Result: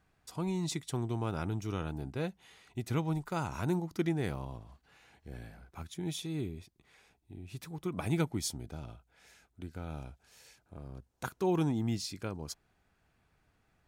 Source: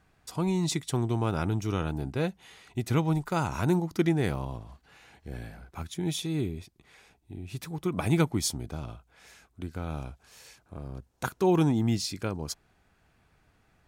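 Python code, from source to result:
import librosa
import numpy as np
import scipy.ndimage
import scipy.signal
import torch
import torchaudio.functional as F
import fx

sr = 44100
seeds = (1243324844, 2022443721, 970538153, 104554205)

y = fx.notch(x, sr, hz=1100.0, q=7.6, at=(8.12, 10.78))
y = F.gain(torch.from_numpy(y), -6.5).numpy()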